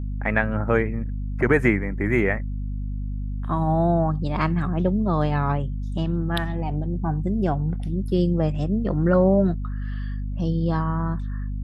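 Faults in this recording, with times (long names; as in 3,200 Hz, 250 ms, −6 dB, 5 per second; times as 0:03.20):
mains hum 50 Hz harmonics 5 −28 dBFS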